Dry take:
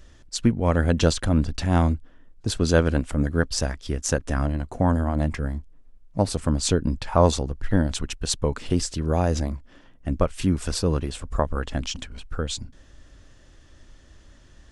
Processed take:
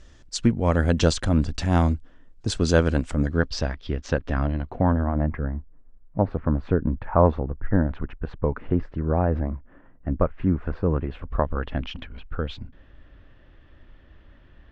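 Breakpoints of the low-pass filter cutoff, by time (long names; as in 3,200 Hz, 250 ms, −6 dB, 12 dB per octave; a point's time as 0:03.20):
low-pass filter 24 dB per octave
0:03.06 8,400 Hz
0:03.76 4,000 Hz
0:04.56 4,000 Hz
0:05.25 1,800 Hz
0:10.90 1,800 Hz
0:11.32 3,000 Hz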